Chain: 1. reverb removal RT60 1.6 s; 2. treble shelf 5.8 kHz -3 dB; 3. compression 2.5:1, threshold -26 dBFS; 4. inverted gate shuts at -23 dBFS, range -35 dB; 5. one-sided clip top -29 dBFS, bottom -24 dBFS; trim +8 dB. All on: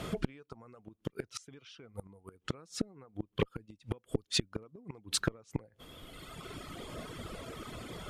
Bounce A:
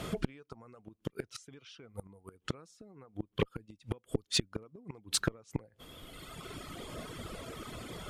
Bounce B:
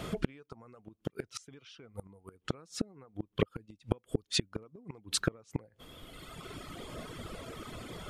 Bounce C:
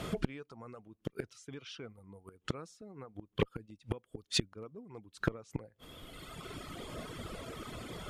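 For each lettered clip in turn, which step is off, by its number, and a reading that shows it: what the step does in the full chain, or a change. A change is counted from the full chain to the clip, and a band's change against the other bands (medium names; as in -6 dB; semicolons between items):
2, momentary loudness spread change +1 LU; 5, distortion -12 dB; 3, momentary loudness spread change -4 LU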